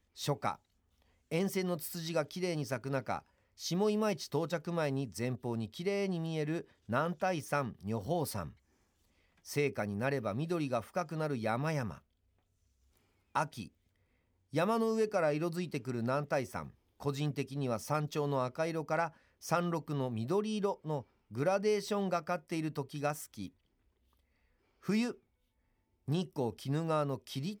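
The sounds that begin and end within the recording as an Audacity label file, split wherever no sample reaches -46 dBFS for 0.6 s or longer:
1.310000	8.500000	sound
9.460000	11.980000	sound
13.350000	13.680000	sound
14.530000	23.480000	sound
24.850000	25.150000	sound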